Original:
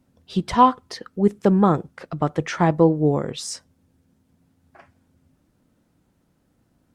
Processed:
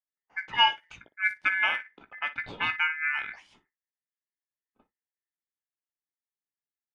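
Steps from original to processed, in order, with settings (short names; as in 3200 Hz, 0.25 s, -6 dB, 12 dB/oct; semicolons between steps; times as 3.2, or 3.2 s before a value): gate -47 dBFS, range -21 dB; ripple EQ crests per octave 1.4, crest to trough 9 dB; ring modulator 1900 Hz; early reflections 17 ms -10 dB, 59 ms -16.5 dB; low-pass opened by the level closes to 750 Hz, open at -15 dBFS; gain -8 dB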